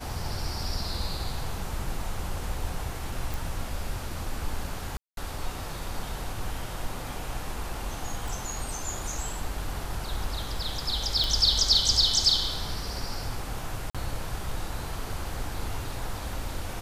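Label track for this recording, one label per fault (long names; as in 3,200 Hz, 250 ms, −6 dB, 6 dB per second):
3.340000	3.340000	click
4.970000	5.170000	drop-out 202 ms
8.280000	8.280000	click
11.240000	11.240000	click
13.900000	13.950000	drop-out 46 ms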